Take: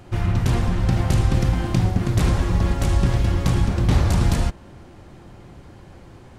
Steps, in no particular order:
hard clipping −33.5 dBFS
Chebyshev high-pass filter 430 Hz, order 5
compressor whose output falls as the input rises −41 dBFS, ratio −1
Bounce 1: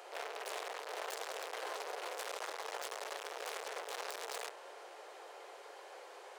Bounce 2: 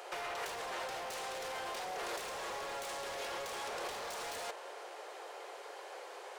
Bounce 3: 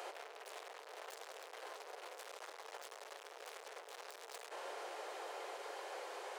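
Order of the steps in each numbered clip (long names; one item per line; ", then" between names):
hard clipping, then Chebyshev high-pass filter, then compressor whose output falls as the input rises
Chebyshev high-pass filter, then hard clipping, then compressor whose output falls as the input rises
hard clipping, then compressor whose output falls as the input rises, then Chebyshev high-pass filter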